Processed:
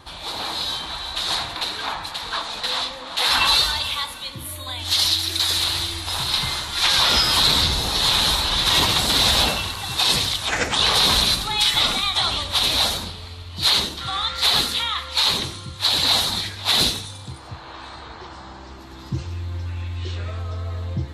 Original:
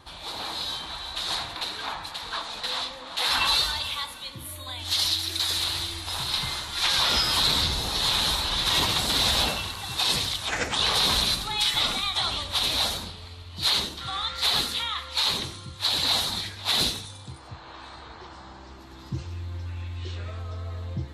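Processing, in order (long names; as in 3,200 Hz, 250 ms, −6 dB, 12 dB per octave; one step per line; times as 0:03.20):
on a send: guitar amp tone stack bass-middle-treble 6-0-2 + convolution reverb RT60 3.5 s, pre-delay 112 ms, DRR 31.5 dB
on the sum: level +5.5 dB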